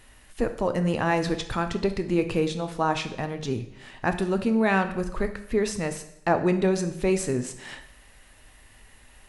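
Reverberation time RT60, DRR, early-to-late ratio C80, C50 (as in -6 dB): 0.80 s, 7.5 dB, 14.0 dB, 11.5 dB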